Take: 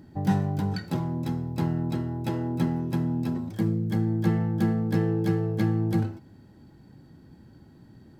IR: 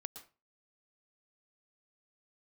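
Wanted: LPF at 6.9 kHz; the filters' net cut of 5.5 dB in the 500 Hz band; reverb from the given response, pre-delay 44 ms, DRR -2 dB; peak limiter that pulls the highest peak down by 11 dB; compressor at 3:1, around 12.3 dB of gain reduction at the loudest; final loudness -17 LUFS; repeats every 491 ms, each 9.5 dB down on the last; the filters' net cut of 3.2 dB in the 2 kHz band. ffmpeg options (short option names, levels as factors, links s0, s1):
-filter_complex "[0:a]lowpass=6900,equalizer=f=500:t=o:g=-8.5,equalizer=f=2000:t=o:g=-3.5,acompressor=threshold=0.0126:ratio=3,alimiter=level_in=4.22:limit=0.0631:level=0:latency=1,volume=0.237,aecho=1:1:491|982|1473|1964:0.335|0.111|0.0365|0.012,asplit=2[s0][s1];[1:a]atrim=start_sample=2205,adelay=44[s2];[s1][s2]afir=irnorm=-1:irlink=0,volume=1.88[s3];[s0][s3]amix=inputs=2:normalize=0,volume=14.1"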